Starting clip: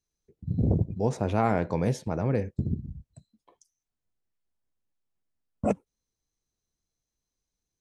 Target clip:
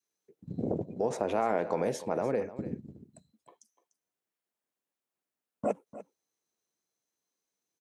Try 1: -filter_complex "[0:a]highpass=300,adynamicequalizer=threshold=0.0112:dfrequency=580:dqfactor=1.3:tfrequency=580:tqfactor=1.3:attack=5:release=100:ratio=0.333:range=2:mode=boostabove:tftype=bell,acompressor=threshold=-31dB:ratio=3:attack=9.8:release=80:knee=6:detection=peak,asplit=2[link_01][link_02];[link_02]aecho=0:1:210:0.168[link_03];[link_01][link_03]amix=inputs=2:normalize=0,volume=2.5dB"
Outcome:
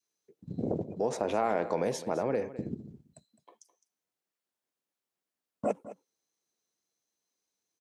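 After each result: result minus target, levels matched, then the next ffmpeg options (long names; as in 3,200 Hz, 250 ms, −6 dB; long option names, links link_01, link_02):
echo 86 ms early; 4,000 Hz band +3.0 dB
-filter_complex "[0:a]highpass=300,adynamicequalizer=threshold=0.0112:dfrequency=580:dqfactor=1.3:tfrequency=580:tqfactor=1.3:attack=5:release=100:ratio=0.333:range=2:mode=boostabove:tftype=bell,acompressor=threshold=-31dB:ratio=3:attack=9.8:release=80:knee=6:detection=peak,asplit=2[link_01][link_02];[link_02]aecho=0:1:296:0.168[link_03];[link_01][link_03]amix=inputs=2:normalize=0,volume=2.5dB"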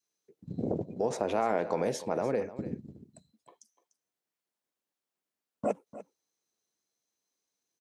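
4,000 Hz band +3.0 dB
-filter_complex "[0:a]highpass=300,adynamicequalizer=threshold=0.0112:dfrequency=580:dqfactor=1.3:tfrequency=580:tqfactor=1.3:attack=5:release=100:ratio=0.333:range=2:mode=boostabove:tftype=bell,acompressor=threshold=-31dB:ratio=3:attack=9.8:release=80:knee=6:detection=peak,equalizer=frequency=4700:width_type=o:width=1.1:gain=-4,asplit=2[link_01][link_02];[link_02]aecho=0:1:296:0.168[link_03];[link_01][link_03]amix=inputs=2:normalize=0,volume=2.5dB"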